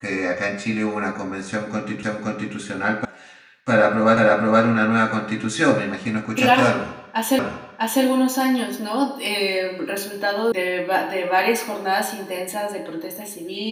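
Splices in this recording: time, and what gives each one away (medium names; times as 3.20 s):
2.03 s: repeat of the last 0.52 s
3.05 s: sound stops dead
4.17 s: repeat of the last 0.47 s
7.39 s: repeat of the last 0.65 s
10.52 s: sound stops dead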